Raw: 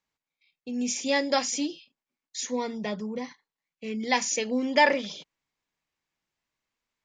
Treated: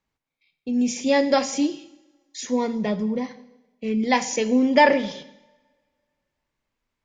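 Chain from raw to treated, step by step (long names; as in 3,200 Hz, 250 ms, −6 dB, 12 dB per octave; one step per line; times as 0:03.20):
spectral tilt −2 dB per octave
coupled-rooms reverb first 0.87 s, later 2.2 s, from −24 dB, DRR 12 dB
level +4 dB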